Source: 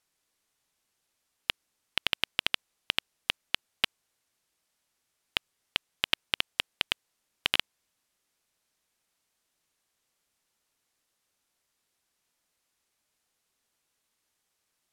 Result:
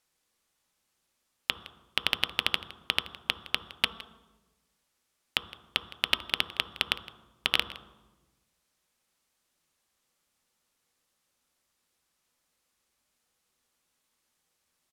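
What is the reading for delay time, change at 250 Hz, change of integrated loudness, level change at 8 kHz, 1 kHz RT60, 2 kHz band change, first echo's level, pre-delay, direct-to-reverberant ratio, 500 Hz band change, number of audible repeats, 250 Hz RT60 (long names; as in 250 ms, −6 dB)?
163 ms, +3.0 dB, +1.0 dB, +1.0 dB, 1.0 s, +1.0 dB, −19.0 dB, 3 ms, 7.5 dB, +2.0 dB, 1, 1.4 s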